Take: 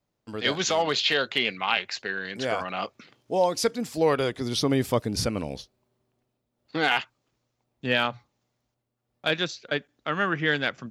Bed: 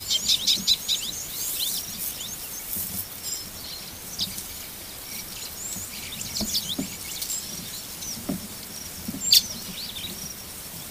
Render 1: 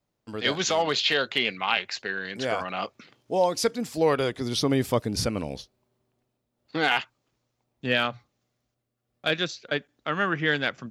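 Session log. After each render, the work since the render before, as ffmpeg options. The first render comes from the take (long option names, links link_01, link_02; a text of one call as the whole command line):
ffmpeg -i in.wav -filter_complex "[0:a]asettb=1/sr,asplit=3[link_01][link_02][link_03];[link_01]atrim=end=7.894[link_04];[link_02]atrim=start=7.89:end=9.49,asetpts=PTS-STARTPTS,afade=type=in:duration=0.004:curve=qsin,afade=type=out:start_time=1.596:duration=0.004:curve=qsin,bandreject=frequency=900:width=5.6[link_05];[link_03]atrim=start=9.486[link_06];[link_04][link_05]acrossfade=duration=0.004:curve1=hsin:curve2=qsin[link_07];[link_07][link_06]acrossfade=duration=0.004:curve1=qsin:curve2=hsin" out.wav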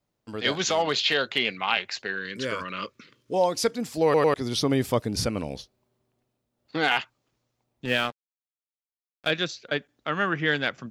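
ffmpeg -i in.wav -filter_complex "[0:a]asettb=1/sr,asplit=3[link_01][link_02][link_03];[link_01]atrim=end=2.164[link_04];[link_02]atrim=start=2.16:end=3.34,asetpts=PTS-STARTPTS,afade=type=in:duration=0.004:curve=qsin,afade=type=out:start_time=1.176:duration=0.004:curve=qsin,asuperstop=centerf=750:order=4:qfactor=1.7[link_05];[link_03]atrim=start=3.336[link_06];[link_04][link_05]acrossfade=duration=0.004:curve1=hsin:curve2=qsin[link_07];[link_07][link_06]acrossfade=duration=0.004:curve1=qsin:curve2=hsin,asettb=1/sr,asplit=3[link_08][link_09][link_10];[link_08]atrim=end=7.854[link_11];[link_09]atrim=start=7.85:end=9.27,asetpts=PTS-STARTPTS,afade=type=in:duration=0.004:curve=qsin,afade=type=out:start_time=1.416:duration=0.004:curve=qsin,aeval=exprs='sgn(val(0))*max(abs(val(0))-0.0119,0)':channel_layout=same[link_12];[link_10]atrim=start=9.266[link_13];[link_11][link_12]acrossfade=duration=0.004:curve1=hsin:curve2=qsin[link_14];[link_14][link_13]acrossfade=duration=0.004:curve1=qsin:curve2=hsin,asplit=4[link_15][link_16][link_17][link_18];[link_15]atrim=end=4.142[link_19];[link_16]atrim=start=4.038:end=4.142[link_20];[link_17]atrim=start=4.038:end=4.142[link_21];[link_18]atrim=start=4.338[link_22];[link_19][link_20]acrossfade=duration=0.004:curve1=hsin:curve2=hsin[link_23];[link_23][link_21]acrossfade=duration=0.004:curve1=hsin:curve2=hsin[link_24];[link_24][link_22]acrossfade=duration=0.004:curve1=hsin:curve2=hsin" out.wav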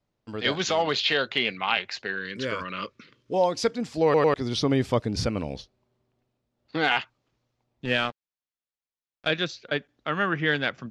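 ffmpeg -i in.wav -af "lowpass=5500,lowshelf=frequency=84:gain=5" out.wav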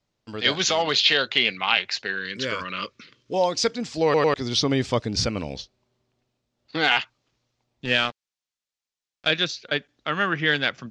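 ffmpeg -i in.wav -af "lowpass=frequency=7400:width=0.5412,lowpass=frequency=7400:width=1.3066,highshelf=frequency=2600:gain=10" out.wav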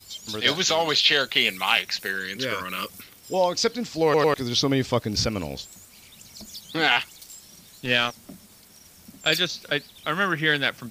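ffmpeg -i in.wav -i bed.wav -filter_complex "[1:a]volume=-14dB[link_01];[0:a][link_01]amix=inputs=2:normalize=0" out.wav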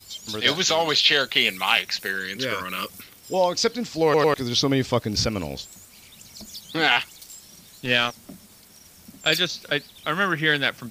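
ffmpeg -i in.wav -af "volume=1dB" out.wav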